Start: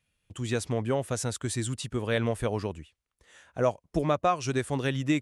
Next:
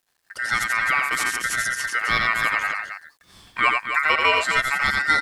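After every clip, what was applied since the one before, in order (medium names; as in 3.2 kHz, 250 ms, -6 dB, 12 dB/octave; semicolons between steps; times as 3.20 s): ring modulator 1.7 kHz; loudspeakers at several distances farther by 30 m -4 dB, 90 m -8 dB; word length cut 12-bit, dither none; trim +8 dB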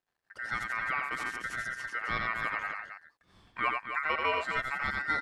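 low-pass 1.4 kHz 6 dB/octave; trim -7.5 dB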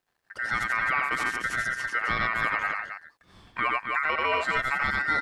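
peak limiter -22.5 dBFS, peak gain reduction 7 dB; trim +7.5 dB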